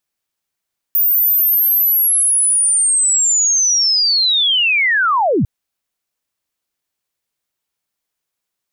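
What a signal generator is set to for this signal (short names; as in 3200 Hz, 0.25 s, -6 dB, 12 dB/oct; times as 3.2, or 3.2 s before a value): chirp linear 15000 Hz -> 82 Hz -10.5 dBFS -> -11.5 dBFS 4.50 s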